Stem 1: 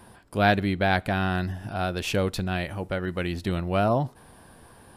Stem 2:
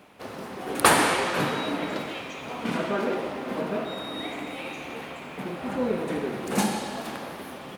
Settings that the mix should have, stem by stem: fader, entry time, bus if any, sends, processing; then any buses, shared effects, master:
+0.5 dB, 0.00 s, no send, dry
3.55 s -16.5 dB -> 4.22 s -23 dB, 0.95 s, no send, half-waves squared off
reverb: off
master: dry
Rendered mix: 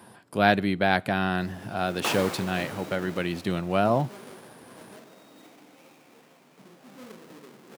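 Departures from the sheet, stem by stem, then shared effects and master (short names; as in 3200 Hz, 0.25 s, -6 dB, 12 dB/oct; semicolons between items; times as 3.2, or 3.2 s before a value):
stem 2: entry 0.95 s -> 1.20 s; master: extra HPF 120 Hz 24 dB/oct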